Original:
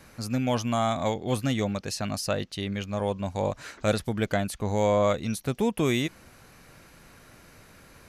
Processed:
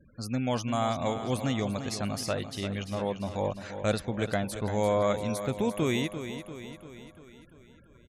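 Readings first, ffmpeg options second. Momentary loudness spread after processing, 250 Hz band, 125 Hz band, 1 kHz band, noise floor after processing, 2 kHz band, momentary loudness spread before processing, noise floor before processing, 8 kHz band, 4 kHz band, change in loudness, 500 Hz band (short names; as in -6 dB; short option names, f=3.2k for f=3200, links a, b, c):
13 LU, -2.5 dB, -2.5 dB, -2.5 dB, -56 dBFS, -2.5 dB, 7 LU, -54 dBFS, -3.0 dB, -2.5 dB, -2.5 dB, -2.5 dB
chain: -af "afftfilt=real='re*gte(hypot(re,im),0.00631)':imag='im*gte(hypot(re,im),0.00631)':win_size=1024:overlap=0.75,aecho=1:1:344|688|1032|1376|1720|2064:0.316|0.177|0.0992|0.0555|0.0311|0.0174,volume=-3dB"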